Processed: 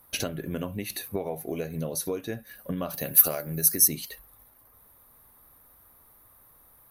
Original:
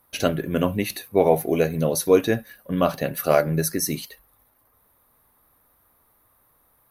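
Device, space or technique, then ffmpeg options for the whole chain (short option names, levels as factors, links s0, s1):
ASMR close-microphone chain: -filter_complex "[0:a]lowshelf=f=130:g=4.5,acompressor=threshold=0.0316:ratio=10,highshelf=f=6200:g=5.5,asettb=1/sr,asplit=3[s0][s1][s2];[s0]atrim=end=2.904[s3];[s1]atrim=start=2.9:end=3.88,asetpts=PTS-STARTPTS,afade=t=in:d=0.004:c=qsin,afade=t=out:st=0.976:d=0.004:c=qsin,aemphasis=mode=production:type=50fm[s4];[s2]atrim=start=3.876[s5];[s3][s4]acrossfade=d=0.004:c1=hsin:c2=qsin[s6];[s6][s5]acrossfade=d=0.004:c1=qsin:c2=hsin,volume=1.19"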